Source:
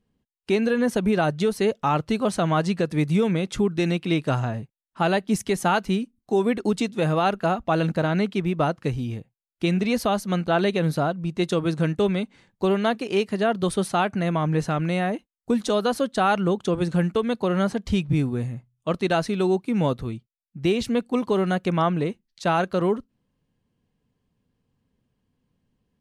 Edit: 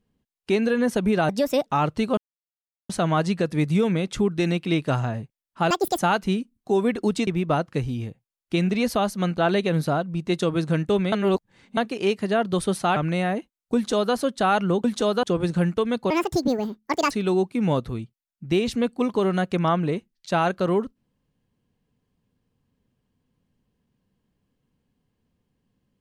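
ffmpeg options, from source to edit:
ffmpeg -i in.wav -filter_complex "[0:a]asplit=14[link_01][link_02][link_03][link_04][link_05][link_06][link_07][link_08][link_09][link_10][link_11][link_12][link_13][link_14];[link_01]atrim=end=1.294[link_15];[link_02]atrim=start=1.29:end=1.78,asetpts=PTS-STARTPTS,asetrate=57771,aresample=44100,atrim=end_sample=16495,asetpts=PTS-STARTPTS[link_16];[link_03]atrim=start=1.776:end=2.29,asetpts=PTS-STARTPTS,afade=type=out:start_time=0.51:duration=0.004:curve=hsin,apad=pad_dur=0.72[link_17];[link_04]atrim=start=2.29:end=5.104,asetpts=PTS-STARTPTS,afade=type=in:duration=0.004:curve=hsin[link_18];[link_05]atrim=start=5.1:end=5.6,asetpts=PTS-STARTPTS,asetrate=79380,aresample=44100[link_19];[link_06]atrim=start=5.596:end=6.892[link_20];[link_07]atrim=start=8.368:end=12.222[link_21];[link_08]atrim=start=12.218:end=12.872,asetpts=PTS-STARTPTS,areverse[link_22];[link_09]atrim=start=12.868:end=14.062[link_23];[link_10]atrim=start=14.728:end=16.612[link_24];[link_11]atrim=start=15.518:end=15.912[link_25];[link_12]atrim=start=16.608:end=17.484[link_26];[link_13]atrim=start=17.48:end=19.24,asetpts=PTS-STARTPTS,asetrate=77175,aresample=44100[link_27];[link_14]atrim=start=19.236[link_28];[link_15][link_16]acrossfade=duration=0.004:curve1=hsin:curve2=hsin[link_29];[link_17][link_18]concat=n=2:v=0:a=1[link_30];[link_29][link_30]acrossfade=duration=0.004:curve1=hsin:curve2=hsin[link_31];[link_31][link_19]acrossfade=duration=0.004:curve1=hsin:curve2=hsin[link_32];[link_32][link_20]acrossfade=duration=0.004:curve1=hsin:curve2=hsin[link_33];[link_33][link_21]acrossfade=duration=0.004:curve1=hsin:curve2=hsin[link_34];[link_34][link_22]acrossfade=duration=0.004:curve1=hsin:curve2=hsin[link_35];[link_35][link_23]acrossfade=duration=0.004:curve1=hsin:curve2=hsin[link_36];[link_36][link_24]acrossfade=duration=0.004:curve1=hsin:curve2=hsin[link_37];[link_37][link_25]acrossfade=duration=0.004:curve1=hsin:curve2=hsin[link_38];[link_38][link_26]acrossfade=duration=0.004:curve1=hsin:curve2=hsin[link_39];[link_39][link_27]acrossfade=duration=0.004:curve1=hsin:curve2=hsin[link_40];[link_40][link_28]acrossfade=duration=0.004:curve1=hsin:curve2=hsin" out.wav

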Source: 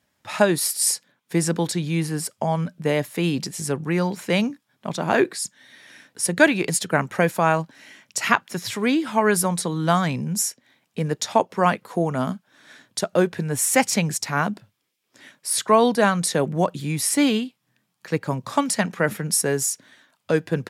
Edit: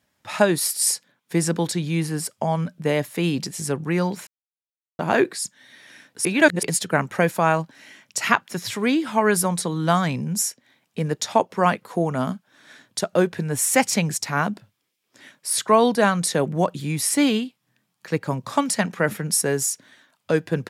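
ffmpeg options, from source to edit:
ffmpeg -i in.wav -filter_complex "[0:a]asplit=5[link_01][link_02][link_03][link_04][link_05];[link_01]atrim=end=4.27,asetpts=PTS-STARTPTS,afade=type=out:start_time=4.266:duration=0.004:curve=hsin[link_06];[link_02]atrim=start=4.27:end=4.99,asetpts=PTS-STARTPTS,volume=0[link_07];[link_03]atrim=start=4.99:end=6.252,asetpts=PTS-STARTPTS,afade=type=in:duration=0.004:curve=hsin[link_08];[link_04]atrim=start=6.248:end=6.632,asetpts=PTS-STARTPTS,areverse[link_09];[link_05]atrim=start=6.628[link_10];[link_06][link_07][link_08]concat=n=3:v=0:a=1[link_11];[link_11][link_09]acrossfade=duration=0.004:curve1=hsin:curve2=hsin[link_12];[link_12][link_10]acrossfade=duration=0.004:curve1=hsin:curve2=hsin" out.wav

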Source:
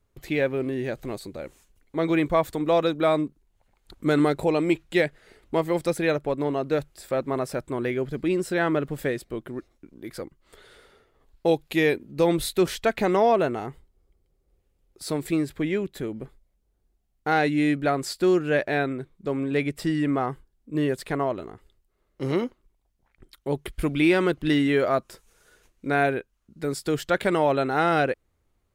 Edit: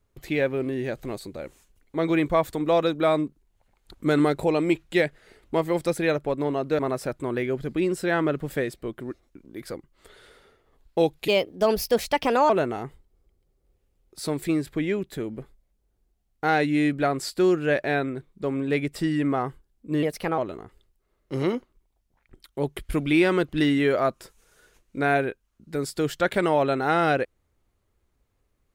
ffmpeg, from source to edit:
ffmpeg -i in.wav -filter_complex "[0:a]asplit=6[link_01][link_02][link_03][link_04][link_05][link_06];[link_01]atrim=end=6.792[link_07];[link_02]atrim=start=7.268:end=11.764[link_08];[link_03]atrim=start=11.76:end=13.33,asetpts=PTS-STARTPTS,asetrate=56889,aresample=44100,atrim=end_sample=53672,asetpts=PTS-STARTPTS[link_09];[link_04]atrim=start=13.326:end=20.864[link_10];[link_05]atrim=start=20.86:end=21.27,asetpts=PTS-STARTPTS,asetrate=51156,aresample=44100,atrim=end_sample=15587,asetpts=PTS-STARTPTS[link_11];[link_06]atrim=start=21.266[link_12];[link_07][link_08]acrossfade=duration=0.004:curve1=hsin:curve2=hsin[link_13];[link_13][link_09]acrossfade=duration=0.004:curve1=hsin:curve2=hsin[link_14];[link_14][link_10]acrossfade=duration=0.004:curve1=hsin:curve2=hsin[link_15];[link_15][link_11]acrossfade=duration=0.004:curve1=hsin:curve2=hsin[link_16];[link_16][link_12]acrossfade=duration=0.004:curve1=hsin:curve2=hsin" out.wav

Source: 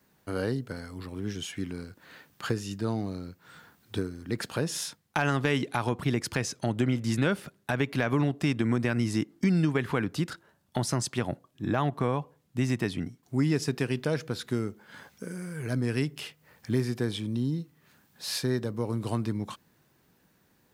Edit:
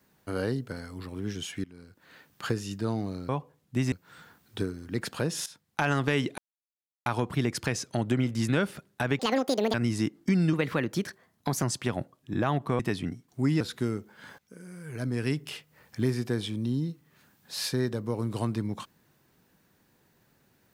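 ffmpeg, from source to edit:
ffmpeg -i in.wav -filter_complex "[0:a]asplit=13[link_01][link_02][link_03][link_04][link_05][link_06][link_07][link_08][link_09][link_10][link_11][link_12][link_13];[link_01]atrim=end=1.64,asetpts=PTS-STARTPTS,afade=type=out:start_time=1.636:duration=0.004:curve=hsin:silence=0.11885[link_14];[link_02]atrim=start=1.64:end=3.292,asetpts=PTS-STARTPTS,afade=type=in:duration=0.8:silence=0.11885[link_15];[link_03]atrim=start=12.108:end=12.742[link_16];[link_04]atrim=start=3.288:end=4.83,asetpts=PTS-STARTPTS,afade=type=out:start_time=1.538:duration=0.004:curve=hsin:silence=0.188365[link_17];[link_05]atrim=start=4.83:end=5.75,asetpts=PTS-STARTPTS,afade=type=in:duration=0.34:silence=0.188365,afade=type=out:start_time=0.916:duration=0.004:curve=hsin,apad=pad_dur=0.68[link_18];[link_06]atrim=start=5.75:end=7.884,asetpts=PTS-STARTPTS,afade=type=in:duration=0.004:curve=hsin[link_19];[link_07]atrim=start=7.88:end=8.89,asetpts=PTS-STARTPTS,asetrate=81144,aresample=44100,atrim=end_sample=24207,asetpts=PTS-STARTPTS[link_20];[link_08]atrim=start=8.886:end=9.684[link_21];[link_09]atrim=start=9.68:end=10.94,asetpts=PTS-STARTPTS,asetrate=50715,aresample=44100,atrim=end_sample=48318,asetpts=PTS-STARTPTS[link_22];[link_10]atrim=start=10.936:end=12.112[link_23];[link_11]atrim=start=12.738:end=13.552[link_24];[link_12]atrim=start=14.308:end=15.09,asetpts=PTS-STARTPTS,afade=type=out:start_time=0.778:duration=0.004:curve=hsin:silence=0.16788[link_25];[link_13]atrim=start=15.09,asetpts=PTS-STARTPTS,afade=type=in:duration=0.97:silence=0.16788[link_26];[link_14][link_15]concat=n=2:v=0:a=1[link_27];[link_27][link_16]acrossfade=duration=0.004:curve1=hsin:curve2=hsin[link_28];[link_17][link_18][link_19]concat=n=3:v=0:a=1[link_29];[link_28][link_29]acrossfade=duration=0.004:curve1=hsin:curve2=hsin[link_30];[link_30][link_20]acrossfade=duration=0.004:curve1=hsin:curve2=hsin[link_31];[link_31][link_21]acrossfade=duration=0.004:curve1=hsin:curve2=hsin[link_32];[link_32][link_22]acrossfade=duration=0.004:curve1=hsin:curve2=hsin[link_33];[link_33][link_23]acrossfade=duration=0.004:curve1=hsin:curve2=hsin[link_34];[link_34][link_24]acrossfade=duration=0.004:curve1=hsin:curve2=hsin[link_35];[link_25][link_26]concat=n=2:v=0:a=1[link_36];[link_35][link_36]acrossfade=duration=0.004:curve1=hsin:curve2=hsin" out.wav

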